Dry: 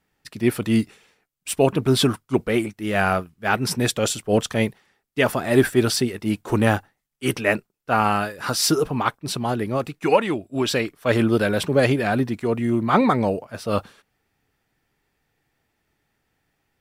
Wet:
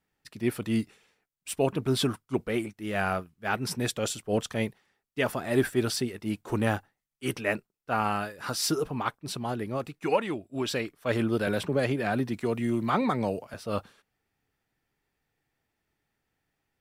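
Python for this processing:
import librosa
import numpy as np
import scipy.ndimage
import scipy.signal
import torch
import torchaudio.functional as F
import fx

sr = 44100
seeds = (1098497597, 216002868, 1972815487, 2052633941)

y = fx.band_squash(x, sr, depth_pct=70, at=(11.47, 13.54))
y = y * librosa.db_to_amplitude(-8.0)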